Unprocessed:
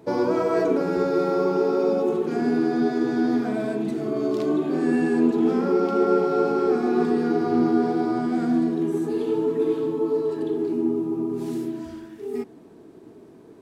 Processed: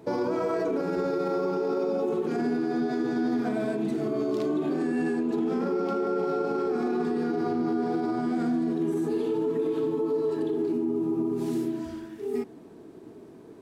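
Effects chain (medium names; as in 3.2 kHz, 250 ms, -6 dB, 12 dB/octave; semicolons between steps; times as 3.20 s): peak limiter -20 dBFS, peak gain reduction 11 dB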